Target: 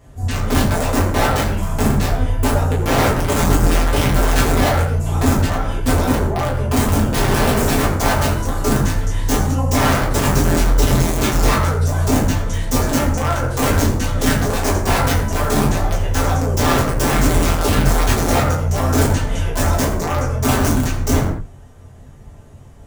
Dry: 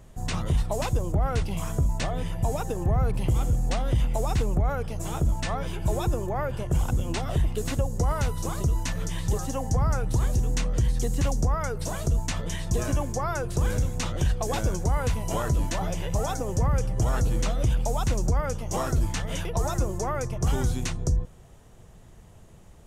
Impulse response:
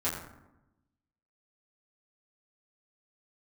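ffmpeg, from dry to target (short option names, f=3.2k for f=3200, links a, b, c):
-filter_complex "[0:a]asplit=3[a][b][c];[a]afade=t=out:st=7.12:d=0.02[d];[b]bass=f=250:g=11,treble=f=4k:g=4,afade=t=in:st=7.12:d=0.02,afade=t=out:st=7.83:d=0.02[e];[c]afade=t=in:st=7.83:d=0.02[f];[d][e][f]amix=inputs=3:normalize=0,asettb=1/sr,asplit=3[g][h][i];[g]atrim=end=10.944[j];[h]atrim=start=10.94:end=11.47,asetpts=PTS-STARTPTS,afade=t=in:d=0.004:c=qsin,afade=t=out:st=0.526:d=0.004:c=qsin,acrossover=split=280|3000[k][l][m];[l]acompressor=threshold=-33dB:ratio=2.5[n];[k][n][m]amix=inputs=3:normalize=0[o];[i]atrim=start=11.466[p];[j][o]acrossfade=d=0.004:c1=hsin:c2=qsin[q];[q][p]acrossfade=d=0.004:c1=qsin:c2=hsin,aeval=exprs='(mod(8.41*val(0)+1,2)-1)/8.41':c=same,flanger=delay=6:depth=7:regen=-74:speed=1.4:shape=sinusoidal[r];[1:a]atrim=start_sample=2205,afade=t=out:st=0.27:d=0.01,atrim=end_sample=12348[s];[r][s]afir=irnorm=-1:irlink=0,volume=4.5dB"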